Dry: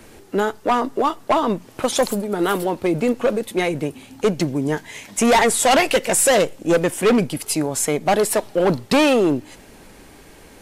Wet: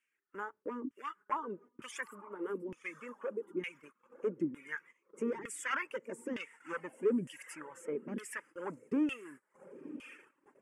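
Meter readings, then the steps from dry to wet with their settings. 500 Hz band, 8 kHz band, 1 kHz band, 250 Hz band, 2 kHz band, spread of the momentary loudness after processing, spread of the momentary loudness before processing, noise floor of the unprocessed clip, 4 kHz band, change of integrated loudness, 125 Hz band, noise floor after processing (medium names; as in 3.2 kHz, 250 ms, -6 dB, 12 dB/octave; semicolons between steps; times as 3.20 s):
-21.0 dB, -28.5 dB, -22.5 dB, -18.0 dB, -17.0 dB, 15 LU, 8 LU, -46 dBFS, -27.5 dB, -20.5 dB, -25.0 dB, -83 dBFS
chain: block-companded coder 7-bit; peaking EQ 8.5 kHz +6.5 dB 1.2 oct; echo that smears into a reverb 1038 ms, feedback 49%, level -13 dB; reverb removal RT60 0.96 s; high-pass 130 Hz; LFO band-pass saw down 1.1 Hz 240–3100 Hz; gate -44 dBFS, range -18 dB; static phaser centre 1.7 kHz, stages 4; trim -7 dB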